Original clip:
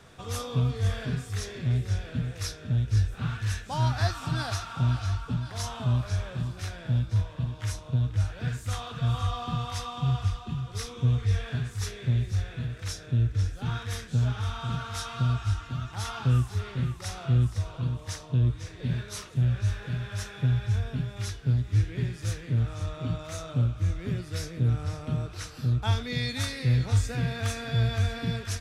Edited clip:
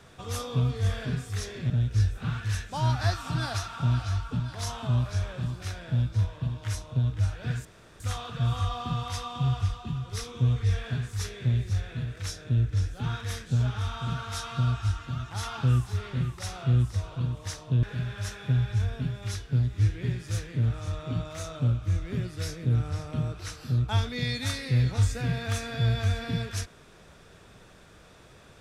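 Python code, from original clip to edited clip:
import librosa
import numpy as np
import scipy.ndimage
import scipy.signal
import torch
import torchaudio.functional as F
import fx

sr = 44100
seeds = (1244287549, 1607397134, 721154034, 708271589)

y = fx.edit(x, sr, fx.cut(start_s=1.7, length_s=0.97),
    fx.insert_room_tone(at_s=8.62, length_s=0.35),
    fx.cut(start_s=18.45, length_s=1.32), tone=tone)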